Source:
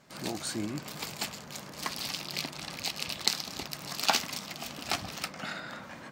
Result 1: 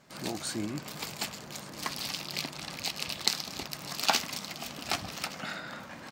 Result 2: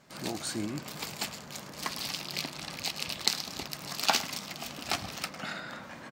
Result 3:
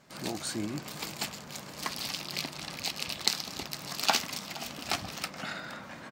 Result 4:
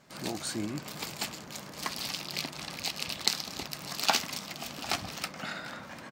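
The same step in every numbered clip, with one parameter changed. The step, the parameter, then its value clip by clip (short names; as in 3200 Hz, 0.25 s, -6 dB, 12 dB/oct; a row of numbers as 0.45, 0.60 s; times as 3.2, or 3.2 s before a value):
echo, time: 1.17, 0.107, 0.468, 0.747 s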